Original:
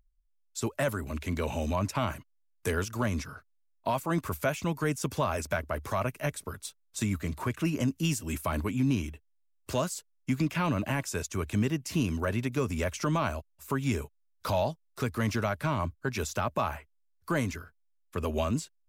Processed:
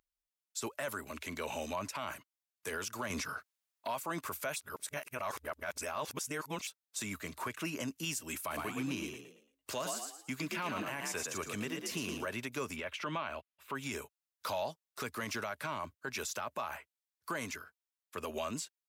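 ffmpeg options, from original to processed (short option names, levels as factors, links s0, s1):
-filter_complex "[0:a]asettb=1/sr,asplit=3[s0][s1][s2];[s0]atrim=end=3.104[s3];[s1]atrim=start=3.1:end=3.88,asetpts=PTS-STARTPTS,afade=t=in:d=0.004:c=qsin,afade=t=out:st=0.776:d=0.004:c=qsin,aeval=exprs='0.126*sin(PI/2*1.41*val(0)/0.126)':c=same[s4];[s2]atrim=start=3.876[s5];[s3][s4]acrossfade=d=0.004:c1=hsin:c2=qsin[s6];[s6][s5]acrossfade=d=0.004:c1=qsin:c2=hsin,asplit=3[s7][s8][s9];[s7]afade=t=out:st=8.5:d=0.02[s10];[s8]asplit=5[s11][s12][s13][s14][s15];[s12]adelay=113,afreqshift=49,volume=0.473[s16];[s13]adelay=226,afreqshift=98,volume=0.157[s17];[s14]adelay=339,afreqshift=147,volume=0.0513[s18];[s15]adelay=452,afreqshift=196,volume=0.017[s19];[s11][s16][s17][s18][s19]amix=inputs=5:normalize=0,afade=t=in:st=8.5:d=0.02,afade=t=out:st=12.25:d=0.02[s20];[s9]afade=t=in:st=12.25:d=0.02[s21];[s10][s20][s21]amix=inputs=3:normalize=0,asettb=1/sr,asplit=3[s22][s23][s24];[s22]atrim=end=12.764[s25];[s23]atrim=start=12.76:end=13.75,asetpts=PTS-STARTPTS,afade=t=in:d=0.004:c=qsin,afade=t=out:st=0.986:d=0.004:c=qsin,highshelf=f=4500:t=q:w=1.5:g=-12.5[s26];[s24]atrim=start=13.746[s27];[s25][s26]acrossfade=d=0.004:c1=hsin:c2=qsin[s28];[s28][s27]acrossfade=d=0.004:c1=qsin:c2=hsin,asplit=3[s29][s30][s31];[s29]atrim=end=4.562[s32];[s30]atrim=start=4.558:end=6.672,asetpts=PTS-STARTPTS,areverse[s33];[s31]atrim=start=6.668[s34];[s32][s33]acrossfade=d=0.004:c1=hsin:c2=hsin[s35];[s35][s34]acrossfade=d=0.004:c1=hsin:c2=hsin,highpass=f=790:p=1,alimiter=level_in=1.5:limit=0.0631:level=0:latency=1:release=51,volume=0.668"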